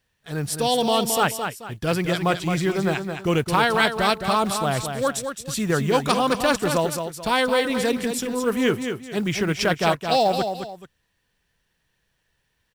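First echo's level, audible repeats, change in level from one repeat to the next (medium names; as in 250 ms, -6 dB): -7.0 dB, 2, -9.5 dB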